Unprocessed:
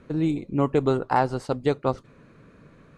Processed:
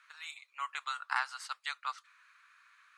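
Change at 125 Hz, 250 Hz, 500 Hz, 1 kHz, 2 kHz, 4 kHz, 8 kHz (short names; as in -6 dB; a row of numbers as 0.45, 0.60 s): under -40 dB, under -40 dB, under -40 dB, -11.0 dB, 0.0 dB, 0.0 dB, n/a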